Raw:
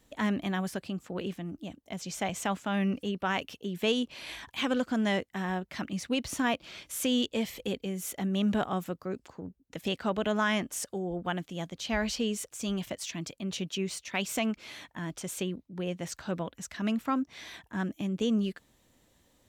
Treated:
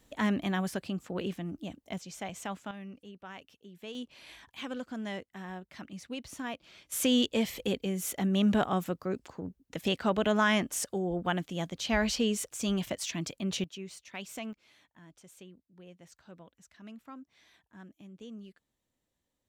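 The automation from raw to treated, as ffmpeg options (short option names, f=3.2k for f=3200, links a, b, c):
-af "asetnsamples=n=441:p=0,asendcmd='1.98 volume volume -7dB;2.71 volume volume -16dB;3.95 volume volume -9.5dB;6.92 volume volume 2dB;13.64 volume volume -10dB;14.53 volume volume -18dB',volume=0.5dB"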